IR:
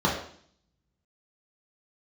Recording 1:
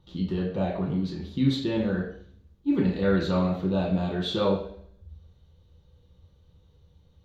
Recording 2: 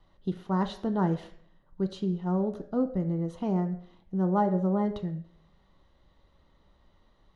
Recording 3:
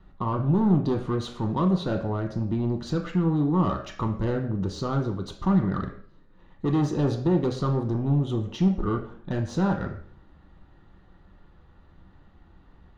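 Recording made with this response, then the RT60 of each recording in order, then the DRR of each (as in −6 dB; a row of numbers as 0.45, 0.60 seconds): 1; 0.55, 0.55, 0.55 seconds; −4.5, 7.5, 2.5 decibels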